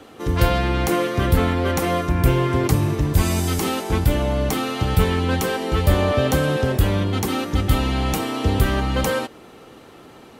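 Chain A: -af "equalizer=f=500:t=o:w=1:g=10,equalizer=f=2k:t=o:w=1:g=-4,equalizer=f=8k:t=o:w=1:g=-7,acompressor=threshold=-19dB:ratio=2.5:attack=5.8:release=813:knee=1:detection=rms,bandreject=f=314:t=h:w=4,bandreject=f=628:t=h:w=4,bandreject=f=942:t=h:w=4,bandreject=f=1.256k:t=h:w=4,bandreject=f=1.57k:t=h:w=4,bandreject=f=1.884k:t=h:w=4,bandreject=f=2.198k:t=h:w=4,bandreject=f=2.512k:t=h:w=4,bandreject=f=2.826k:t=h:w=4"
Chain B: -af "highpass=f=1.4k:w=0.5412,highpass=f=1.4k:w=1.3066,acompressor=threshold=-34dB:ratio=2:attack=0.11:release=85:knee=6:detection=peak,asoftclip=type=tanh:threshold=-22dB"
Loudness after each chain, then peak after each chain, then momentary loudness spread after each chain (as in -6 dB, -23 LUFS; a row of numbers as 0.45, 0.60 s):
-23.5, -35.5 LUFS; -9.5, -23.5 dBFS; 3, 4 LU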